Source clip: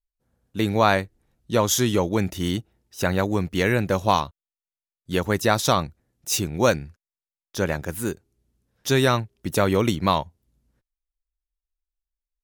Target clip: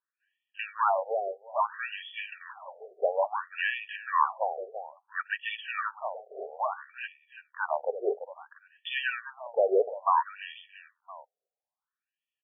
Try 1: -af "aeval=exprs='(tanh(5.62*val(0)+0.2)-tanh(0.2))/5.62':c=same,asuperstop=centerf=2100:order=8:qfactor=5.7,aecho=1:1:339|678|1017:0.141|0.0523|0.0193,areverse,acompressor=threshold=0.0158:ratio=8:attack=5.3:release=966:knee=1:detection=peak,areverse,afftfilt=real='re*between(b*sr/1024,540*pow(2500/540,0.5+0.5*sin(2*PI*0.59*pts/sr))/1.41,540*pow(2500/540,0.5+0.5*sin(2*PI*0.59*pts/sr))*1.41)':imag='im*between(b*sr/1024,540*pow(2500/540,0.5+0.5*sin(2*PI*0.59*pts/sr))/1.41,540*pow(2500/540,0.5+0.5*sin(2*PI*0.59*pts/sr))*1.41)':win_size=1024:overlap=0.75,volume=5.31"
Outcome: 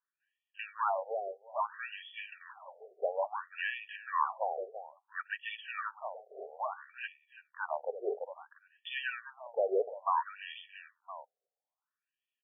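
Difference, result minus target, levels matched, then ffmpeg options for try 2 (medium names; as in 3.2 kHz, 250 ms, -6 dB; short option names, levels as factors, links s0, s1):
compression: peak gain reduction +6 dB
-af "aeval=exprs='(tanh(5.62*val(0)+0.2)-tanh(0.2))/5.62':c=same,asuperstop=centerf=2100:order=8:qfactor=5.7,aecho=1:1:339|678|1017:0.141|0.0523|0.0193,areverse,acompressor=threshold=0.0355:ratio=8:attack=5.3:release=966:knee=1:detection=peak,areverse,afftfilt=real='re*between(b*sr/1024,540*pow(2500/540,0.5+0.5*sin(2*PI*0.59*pts/sr))/1.41,540*pow(2500/540,0.5+0.5*sin(2*PI*0.59*pts/sr))*1.41)':imag='im*between(b*sr/1024,540*pow(2500/540,0.5+0.5*sin(2*PI*0.59*pts/sr))/1.41,540*pow(2500/540,0.5+0.5*sin(2*PI*0.59*pts/sr))*1.41)':win_size=1024:overlap=0.75,volume=5.31"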